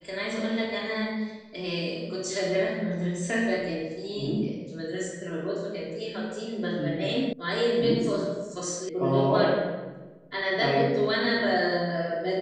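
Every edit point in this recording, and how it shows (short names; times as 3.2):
7.33 sound cut off
8.89 sound cut off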